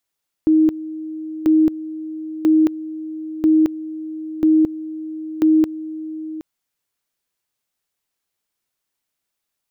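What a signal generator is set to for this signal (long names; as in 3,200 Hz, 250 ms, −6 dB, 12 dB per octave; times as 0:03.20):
tone at two levels in turn 314 Hz −10 dBFS, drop 16 dB, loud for 0.22 s, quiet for 0.77 s, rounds 6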